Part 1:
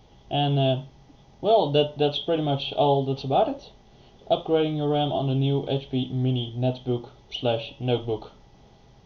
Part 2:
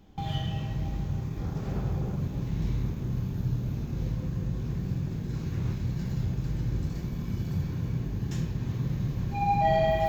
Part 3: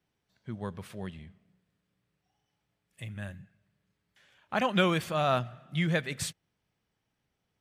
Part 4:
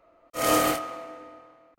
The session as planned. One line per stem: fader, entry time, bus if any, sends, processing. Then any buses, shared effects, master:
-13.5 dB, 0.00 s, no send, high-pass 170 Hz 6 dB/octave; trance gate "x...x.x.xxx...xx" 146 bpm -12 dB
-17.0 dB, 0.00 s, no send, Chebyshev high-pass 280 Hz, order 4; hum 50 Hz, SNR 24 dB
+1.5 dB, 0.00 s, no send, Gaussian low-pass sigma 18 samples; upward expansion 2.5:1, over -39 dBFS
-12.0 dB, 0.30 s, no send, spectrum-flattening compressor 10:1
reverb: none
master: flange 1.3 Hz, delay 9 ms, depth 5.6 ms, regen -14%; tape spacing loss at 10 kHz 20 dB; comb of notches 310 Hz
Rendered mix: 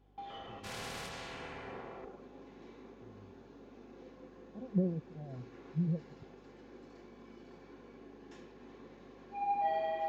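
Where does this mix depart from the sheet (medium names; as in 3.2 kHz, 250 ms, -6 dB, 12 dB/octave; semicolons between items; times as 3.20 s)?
stem 1: muted; stem 2 -17.0 dB -> -5.5 dB; master: missing flange 1.3 Hz, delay 9 ms, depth 5.6 ms, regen -14%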